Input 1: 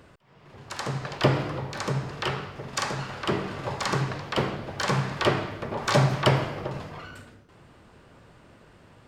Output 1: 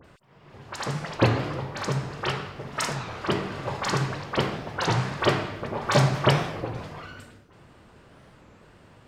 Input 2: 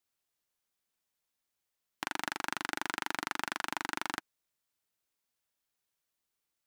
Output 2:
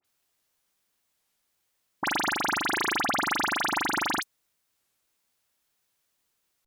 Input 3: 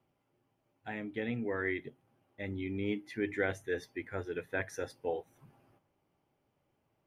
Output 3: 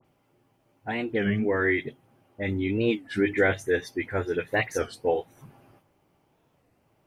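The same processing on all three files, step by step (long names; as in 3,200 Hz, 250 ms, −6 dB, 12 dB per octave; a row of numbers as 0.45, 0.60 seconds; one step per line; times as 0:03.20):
all-pass dispersion highs, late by 48 ms, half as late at 2,500 Hz
wow of a warped record 33 1/3 rpm, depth 250 cents
loudness normalisation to −27 LKFS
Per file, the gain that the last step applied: +0.5, +9.5, +10.5 decibels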